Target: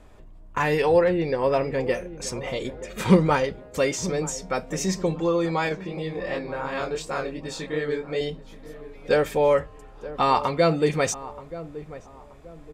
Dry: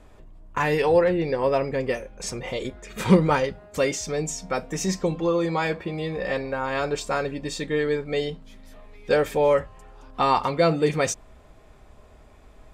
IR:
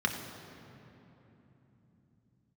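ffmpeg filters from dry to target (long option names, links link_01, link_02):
-filter_complex "[0:a]asettb=1/sr,asplit=3[link_01][link_02][link_03];[link_01]atrim=end=5.694[link_04];[link_02]atrim=start=5.69:end=8.21,asetpts=PTS-STARTPTS,afade=type=in:duration=0.004:curve=qsin,afade=type=out:start_time=2.516:duration=0.004:curve=qsin,flanger=delay=18.5:depth=6.6:speed=2.8[link_05];[link_03]atrim=start=8.206[link_06];[link_04][link_05]acrossfade=duration=0.004:curve1=hsin:curve2=qsin[link_07];[link_07][link_06]acrossfade=duration=0.004:curve1=qsin:curve2=hsin,asplit=2[link_08][link_09];[link_09]adelay=928,lowpass=frequency=950:poles=1,volume=-14.5dB,asplit=2[link_10][link_11];[link_11]adelay=928,lowpass=frequency=950:poles=1,volume=0.38,asplit=2[link_12][link_13];[link_13]adelay=928,lowpass=frequency=950:poles=1,volume=0.38,asplit=2[link_14][link_15];[link_15]adelay=928,lowpass=frequency=950:poles=1,volume=0.38[link_16];[link_08][link_10][link_12][link_14][link_16]amix=inputs=5:normalize=0"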